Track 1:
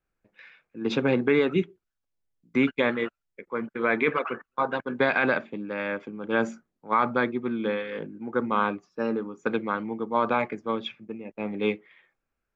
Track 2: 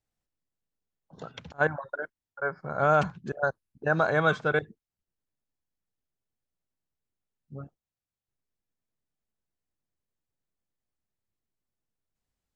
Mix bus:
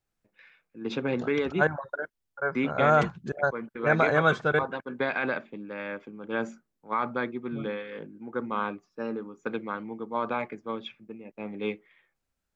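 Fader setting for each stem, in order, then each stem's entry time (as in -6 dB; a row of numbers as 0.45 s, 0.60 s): -5.5 dB, +1.0 dB; 0.00 s, 0.00 s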